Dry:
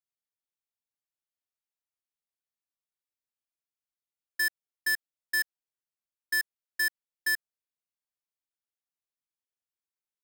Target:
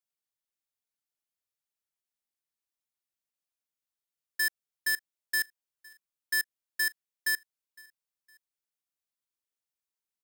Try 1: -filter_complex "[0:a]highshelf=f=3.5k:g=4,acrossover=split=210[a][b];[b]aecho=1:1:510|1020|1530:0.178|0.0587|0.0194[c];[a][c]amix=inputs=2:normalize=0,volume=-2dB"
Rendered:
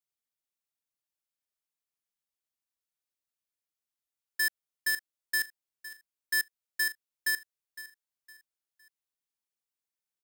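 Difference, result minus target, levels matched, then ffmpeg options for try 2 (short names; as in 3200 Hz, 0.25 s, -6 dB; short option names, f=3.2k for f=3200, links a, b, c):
echo-to-direct +5.5 dB
-filter_complex "[0:a]highshelf=f=3.5k:g=4,acrossover=split=210[a][b];[b]aecho=1:1:510|1020:0.0668|0.0221[c];[a][c]amix=inputs=2:normalize=0,volume=-2dB"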